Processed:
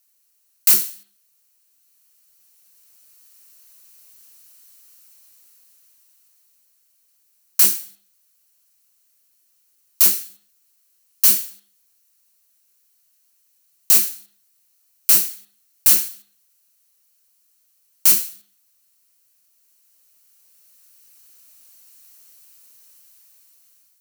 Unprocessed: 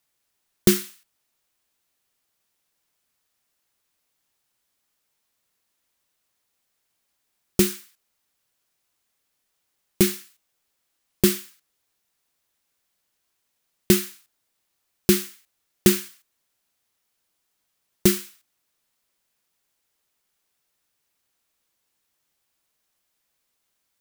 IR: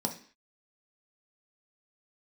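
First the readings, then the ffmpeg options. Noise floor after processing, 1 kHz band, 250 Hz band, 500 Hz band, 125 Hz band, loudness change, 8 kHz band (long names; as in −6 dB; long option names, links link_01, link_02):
−63 dBFS, +1.0 dB, −19.5 dB, −17.5 dB, below −20 dB, +7.0 dB, +9.0 dB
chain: -filter_complex "[0:a]dynaudnorm=framelen=850:gausssize=5:maxgain=15dB,aeval=exprs='(mod(7.08*val(0)+1,2)-1)/7.08':channel_layout=same,crystalizer=i=4:c=0,asplit=2[link_01][link_02];[1:a]atrim=start_sample=2205,asetrate=33075,aresample=44100,lowshelf=frequency=370:gain=-10.5[link_03];[link_02][link_03]afir=irnorm=-1:irlink=0,volume=-14.5dB[link_04];[link_01][link_04]amix=inputs=2:normalize=0,volume=-5.5dB"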